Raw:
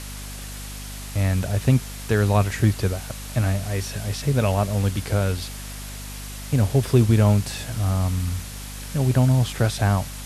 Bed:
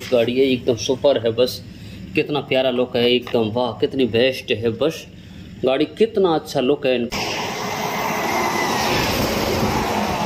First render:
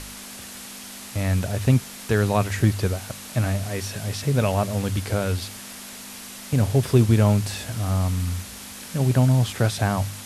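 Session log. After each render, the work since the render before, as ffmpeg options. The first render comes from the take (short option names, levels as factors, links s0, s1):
-af "bandreject=f=50:t=h:w=4,bandreject=f=100:t=h:w=4,bandreject=f=150:t=h:w=4"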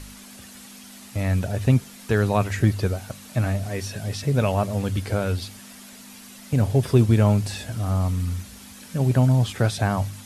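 -af "afftdn=nr=8:nf=-39"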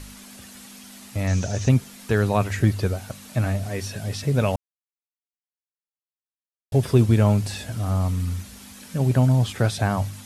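-filter_complex "[0:a]asettb=1/sr,asplit=3[s0][s1][s2];[s0]atrim=end=1.274[s3];[s1]atrim=start=1.27:end=1.69,asetpts=PTS-STARTPTS,afade=t=in:d=0.004:c=qsin,afade=t=out:st=0.416:d=0.004:c=qsin,lowpass=f=6200:t=q:w=6.3[s4];[s2]atrim=start=1.686[s5];[s3][s4]acrossfade=d=0.004:c1=hsin:c2=qsin[s6];[s6][s5]acrossfade=d=0.004:c1=qsin:c2=hsin,asplit=3[s7][s8][s9];[s7]atrim=end=4.56,asetpts=PTS-STARTPTS,afade=t=out:st=4.556:d=0.004:c=hsin[s10];[s8]atrim=start=4.56:end=6.72,asetpts=PTS-STARTPTS,volume=0[s11];[s9]atrim=start=6.72,asetpts=PTS-STARTPTS,afade=t=in:d=0.004:c=hsin[s12];[s10][s11][s12]concat=n=3:v=0:a=1"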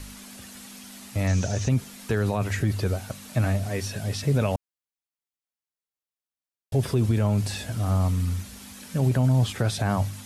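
-filter_complex "[0:a]acrossover=split=480[s0][s1];[s1]acompressor=threshold=0.0631:ratio=2[s2];[s0][s2]amix=inputs=2:normalize=0,alimiter=limit=0.188:level=0:latency=1:release=27"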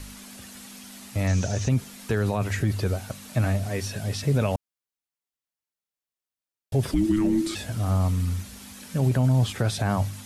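-filter_complex "[0:a]asplit=3[s0][s1][s2];[s0]afade=t=out:st=6.91:d=0.02[s3];[s1]afreqshift=-430,afade=t=in:st=6.91:d=0.02,afade=t=out:st=7.54:d=0.02[s4];[s2]afade=t=in:st=7.54:d=0.02[s5];[s3][s4][s5]amix=inputs=3:normalize=0"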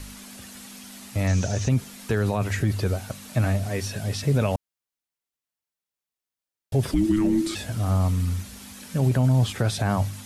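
-af "volume=1.12"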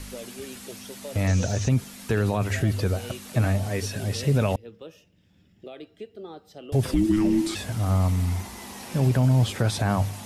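-filter_complex "[1:a]volume=0.0668[s0];[0:a][s0]amix=inputs=2:normalize=0"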